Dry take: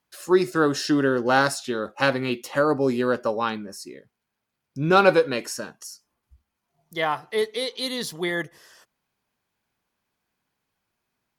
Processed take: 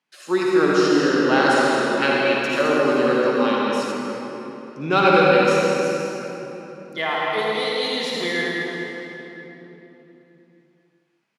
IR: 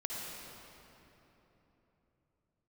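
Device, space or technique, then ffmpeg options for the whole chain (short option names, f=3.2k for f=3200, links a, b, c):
stadium PA: -filter_complex "[0:a]highpass=f=160:w=0.5412,highpass=f=160:w=1.3066,equalizer=f=2.5k:t=o:w=1:g=6,aecho=1:1:160.3|212.8:0.316|0.355[a];[1:a]atrim=start_sample=2205[b];[a][b]afir=irnorm=-1:irlink=0,lowpass=8k,asettb=1/sr,asplit=3[c][d][e];[c]atrim=end=2.524[f];[d]atrim=start=2.52:end=3.92,asetpts=PTS-STARTPTS,afade=t=in:d=0.004:c=qsin,afade=t=out:st=1.396:d=0.004:c=qsin,bass=f=250:g=-1,treble=f=4k:g=5[g];[e]atrim=start=3.916[h];[f][g]acrossfade=d=0.004:c1=hsin:c2=qsin[i];[i][h]acrossfade=d=0.004:c1=qsin:c2=hsin"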